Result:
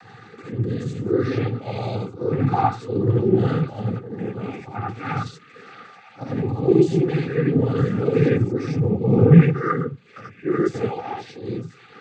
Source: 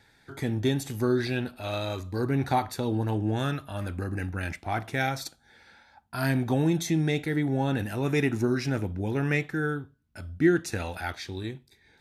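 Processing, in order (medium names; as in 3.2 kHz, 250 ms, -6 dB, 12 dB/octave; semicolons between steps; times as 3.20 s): 8.71–9.46 s: tilt EQ -2.5 dB/octave; feedback echo behind a high-pass 959 ms, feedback 46%, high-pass 2.3 kHz, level -13.5 dB; upward compressor, threshold -35 dBFS; LFO notch saw up 0.43 Hz 540–1800 Hz; slow attack 141 ms; gated-style reverb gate 110 ms rising, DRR -3.5 dB; noise-vocoded speech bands 16; tone controls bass +9 dB, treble -8 dB; small resonant body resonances 460/790/1200 Hz, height 15 dB, ringing for 30 ms; trim -5.5 dB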